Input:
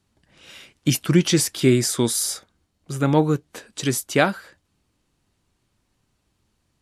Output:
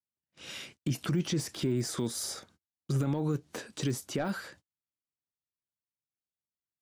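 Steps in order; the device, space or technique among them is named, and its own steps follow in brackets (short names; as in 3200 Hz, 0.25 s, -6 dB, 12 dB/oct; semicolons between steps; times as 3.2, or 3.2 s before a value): gate -53 dBFS, range -39 dB; broadcast voice chain (HPF 100 Hz 12 dB/oct; de-esser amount 100%; compressor 5:1, threshold -22 dBFS, peak gain reduction 10 dB; bell 5700 Hz +4 dB 0.91 oct; limiter -24 dBFS, peak gain reduction 10.5 dB); low shelf 260 Hz +4.5 dB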